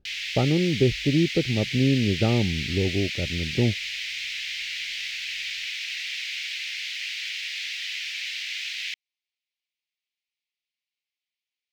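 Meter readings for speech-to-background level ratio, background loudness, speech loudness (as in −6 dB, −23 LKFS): 5.0 dB, −29.5 LKFS, −24.5 LKFS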